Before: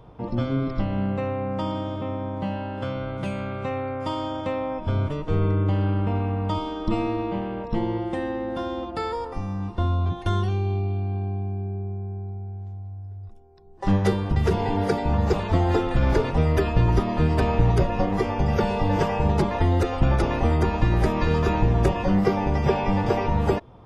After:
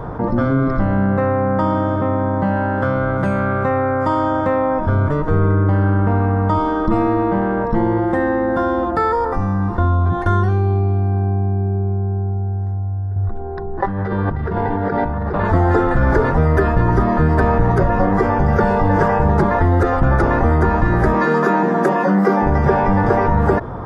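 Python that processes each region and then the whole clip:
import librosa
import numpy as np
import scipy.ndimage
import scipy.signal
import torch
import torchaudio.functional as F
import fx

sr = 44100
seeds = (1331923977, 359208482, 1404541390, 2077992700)

y = fx.chain(x, sr, fx.lowpass(hz=4100.0, slope=24),
    fx.over_compress(threshold_db=-32.0, ratio=-1.0), at=(13.16, 15.45))
y = fx.chain(y, sr, fx.steep_highpass(hz=170.0, slope=48),
    fx.high_shelf(hz=6300.0, db=6.5), at=(21.14, 22.42))
y = fx.high_shelf_res(y, sr, hz=2100.0, db=-8.5, q=3.0)
y = fx.hum_notches(y, sr, base_hz=60, count=2)
y = fx.env_flatten(y, sr, amount_pct=50)
y = y * librosa.db_to_amplitude(4.0)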